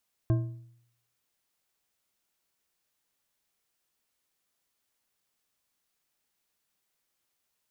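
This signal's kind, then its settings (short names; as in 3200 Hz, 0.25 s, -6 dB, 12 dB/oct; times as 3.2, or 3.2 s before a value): metal hit bar, lowest mode 119 Hz, decay 0.70 s, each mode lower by 8 dB, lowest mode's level -19.5 dB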